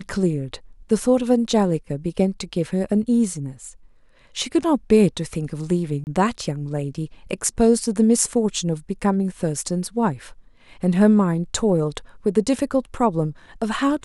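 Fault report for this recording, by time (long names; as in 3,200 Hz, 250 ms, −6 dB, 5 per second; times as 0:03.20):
0:06.04–0:06.07: drop-out 29 ms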